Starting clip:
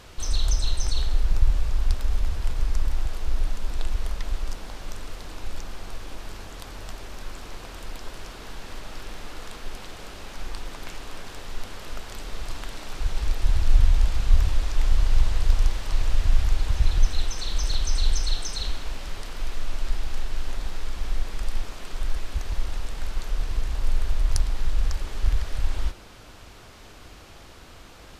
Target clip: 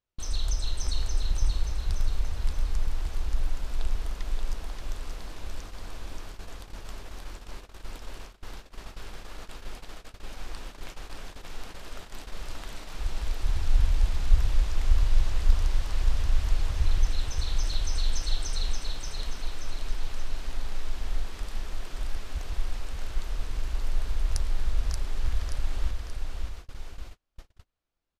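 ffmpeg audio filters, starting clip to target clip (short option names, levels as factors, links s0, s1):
-af "aecho=1:1:579|1158|1737|2316|2895|3474:0.631|0.278|0.122|0.0537|0.0236|0.0104,agate=range=0.0126:threshold=0.0251:ratio=16:detection=peak,volume=0.531"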